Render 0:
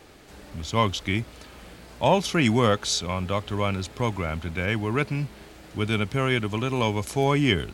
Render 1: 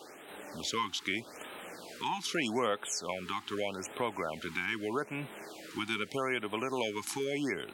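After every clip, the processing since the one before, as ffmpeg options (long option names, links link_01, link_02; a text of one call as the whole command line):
ffmpeg -i in.wav -af "highpass=340,acompressor=threshold=-35dB:ratio=2.5,afftfilt=real='re*(1-between(b*sr/1024,510*pow(5800/510,0.5+0.5*sin(2*PI*0.81*pts/sr))/1.41,510*pow(5800/510,0.5+0.5*sin(2*PI*0.81*pts/sr))*1.41))':imag='im*(1-between(b*sr/1024,510*pow(5800/510,0.5+0.5*sin(2*PI*0.81*pts/sr))/1.41,510*pow(5800/510,0.5+0.5*sin(2*PI*0.81*pts/sr))*1.41))':win_size=1024:overlap=0.75,volume=2.5dB" out.wav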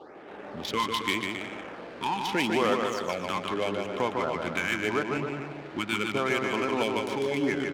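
ffmpeg -i in.wav -filter_complex "[0:a]equalizer=frequency=7400:width_type=o:width=0.71:gain=-4.5,asplit=2[link_01][link_02];[link_02]aecho=0:1:150|270|366|442.8|504.2:0.631|0.398|0.251|0.158|0.1[link_03];[link_01][link_03]amix=inputs=2:normalize=0,adynamicsmooth=sensitivity=7.5:basefreq=1500,volume=5dB" out.wav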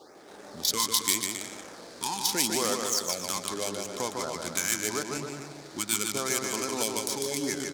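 ffmpeg -i in.wav -af "aexciter=amount=8.5:drive=7.9:freq=4200,volume=-5dB" out.wav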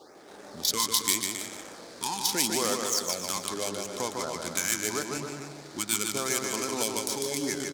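ffmpeg -i in.wav -af "aecho=1:1:305:0.141" out.wav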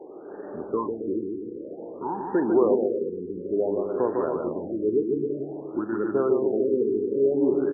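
ffmpeg -i in.wav -filter_complex "[0:a]equalizer=frequency=380:width_type=o:width=1.2:gain=14,asplit=2[link_01][link_02];[link_02]adelay=44,volume=-13dB[link_03];[link_01][link_03]amix=inputs=2:normalize=0,afftfilt=real='re*lt(b*sr/1024,470*pow(1900/470,0.5+0.5*sin(2*PI*0.54*pts/sr)))':imag='im*lt(b*sr/1024,470*pow(1900/470,0.5+0.5*sin(2*PI*0.54*pts/sr)))':win_size=1024:overlap=0.75" out.wav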